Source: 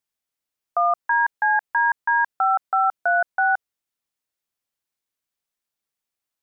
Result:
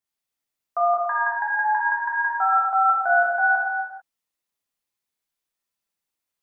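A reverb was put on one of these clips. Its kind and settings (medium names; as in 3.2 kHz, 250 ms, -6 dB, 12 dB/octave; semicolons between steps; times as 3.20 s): gated-style reverb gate 470 ms falling, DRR -6 dB; trim -6 dB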